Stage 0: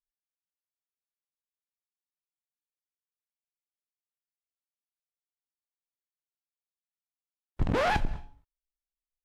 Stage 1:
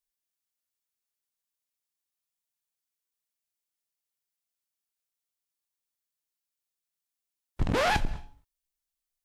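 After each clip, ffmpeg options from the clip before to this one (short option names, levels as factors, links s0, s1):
-af "highshelf=f=3300:g=9"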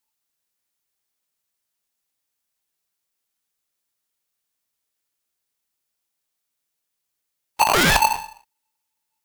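-af "aeval=exprs='val(0)*sgn(sin(2*PI*880*n/s))':c=same,volume=2.66"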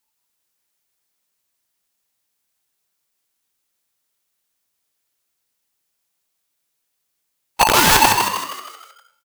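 -filter_complex "[0:a]aeval=exprs='(mod(3.55*val(0)+1,2)-1)/3.55':c=same,asplit=2[s0][s1];[s1]asplit=6[s2][s3][s4][s5][s6][s7];[s2]adelay=157,afreqshift=85,volume=0.562[s8];[s3]adelay=314,afreqshift=170,volume=0.263[s9];[s4]adelay=471,afreqshift=255,volume=0.124[s10];[s5]adelay=628,afreqshift=340,volume=0.0582[s11];[s6]adelay=785,afreqshift=425,volume=0.0275[s12];[s7]adelay=942,afreqshift=510,volume=0.0129[s13];[s8][s9][s10][s11][s12][s13]amix=inputs=6:normalize=0[s14];[s0][s14]amix=inputs=2:normalize=0,volume=1.58"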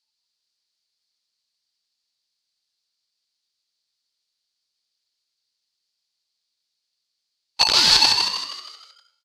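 -af "crystalizer=i=3:c=0,lowpass=f=4500:t=q:w=5.7,volume=0.224"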